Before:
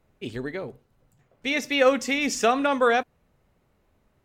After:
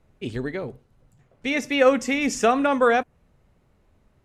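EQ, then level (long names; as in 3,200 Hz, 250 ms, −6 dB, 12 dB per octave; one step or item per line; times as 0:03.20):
low-pass filter 12,000 Hz 24 dB per octave
dynamic equaliser 4,100 Hz, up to −6 dB, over −44 dBFS, Q 1.4
low-shelf EQ 200 Hz +5.5 dB
+1.5 dB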